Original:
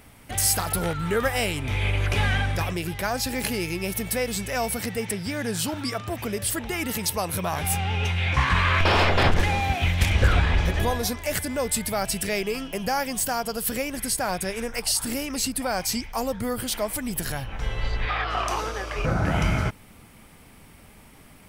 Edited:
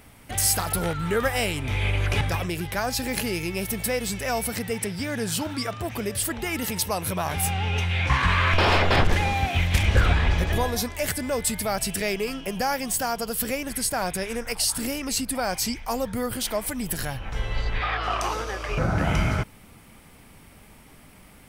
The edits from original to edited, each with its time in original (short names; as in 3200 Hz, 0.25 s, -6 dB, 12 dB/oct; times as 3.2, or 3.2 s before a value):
2.21–2.48 cut